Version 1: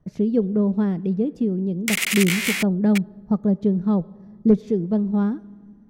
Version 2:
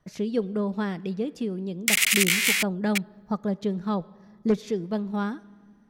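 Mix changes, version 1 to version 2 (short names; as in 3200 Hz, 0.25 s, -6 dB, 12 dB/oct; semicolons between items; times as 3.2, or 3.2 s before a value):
background -6.5 dB; master: add tilt shelf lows -10 dB, about 740 Hz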